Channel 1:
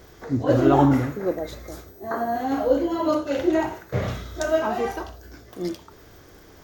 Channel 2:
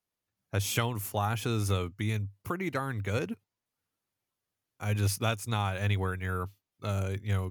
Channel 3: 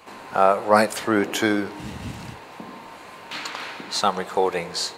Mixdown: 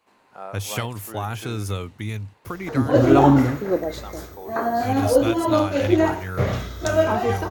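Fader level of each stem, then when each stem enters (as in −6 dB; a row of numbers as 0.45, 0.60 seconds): +3.0, +1.5, −19.5 decibels; 2.45, 0.00, 0.00 seconds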